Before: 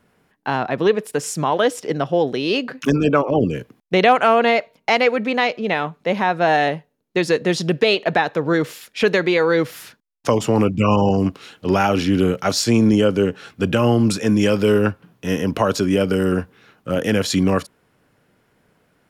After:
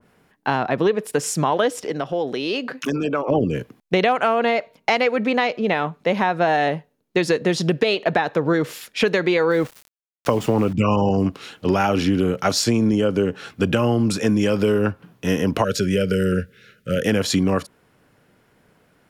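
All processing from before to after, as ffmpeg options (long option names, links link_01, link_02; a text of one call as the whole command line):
ffmpeg -i in.wav -filter_complex "[0:a]asettb=1/sr,asplit=3[link_01][link_02][link_03];[link_01]atrim=end=1.844[link_04];[link_02]atrim=start=1.84:end=3.28,asetpts=PTS-STARTPTS,afade=type=in:duration=0.004:curve=qsin,afade=type=out:start_time=1.436:duration=0.004:curve=qsin,highpass=frequency=230:poles=1,acompressor=threshold=-26dB:ratio=2:attack=3.2:release=140:knee=1:detection=peak[link_05];[link_03]atrim=start=3.276[link_06];[link_04][link_05]acrossfade=duration=0.004:curve1=hsin:curve2=qsin[link_07];[link_07][link_06]acrossfade=duration=0.004:curve1=qsin:curve2=hsin,asettb=1/sr,asplit=3[link_08][link_09][link_10];[link_08]atrim=end=9.514[link_11];[link_09]atrim=start=9.51:end=10.73,asetpts=PTS-STARTPTS,afade=type=in:duration=0.004:curve=qsin,afade=type=out:start_time=1.216:duration=0.004:curve=qsin,equalizer=frequency=7300:width_type=o:width=1.8:gain=-6.5,aeval=exprs='val(0)*gte(abs(val(0)),0.0224)':channel_layout=same[link_12];[link_10]atrim=start=10.726[link_13];[link_11][link_12]acrossfade=duration=0.004:curve1=hsin:curve2=qsin[link_14];[link_14][link_13]acrossfade=duration=0.004:curve1=qsin:curve2=hsin,asettb=1/sr,asplit=3[link_15][link_16][link_17];[link_15]atrim=end=15.644[link_18];[link_16]atrim=start=15.64:end=17.06,asetpts=PTS-STARTPTS,afade=type=in:duration=0.004:curve=qsin,afade=type=out:start_time=1.416:duration=0.004:curve=qsin,asuperstop=centerf=890:order=8:qfactor=1.1,equalizer=frequency=300:width_type=o:width=0.42:gain=-12.5[link_19];[link_17]atrim=start=17.056[link_20];[link_18][link_19]acrossfade=duration=0.004:curve1=hsin:curve2=qsin[link_21];[link_21][link_20]acrossfade=duration=0.004:curve1=qsin:curve2=hsin,acompressor=threshold=-17dB:ratio=6,adynamicequalizer=threshold=0.0224:dfrequency=1700:dqfactor=0.7:tfrequency=1700:tqfactor=0.7:attack=5:release=100:ratio=0.375:range=1.5:mode=cutabove:tftype=highshelf,volume=2.5dB" out.wav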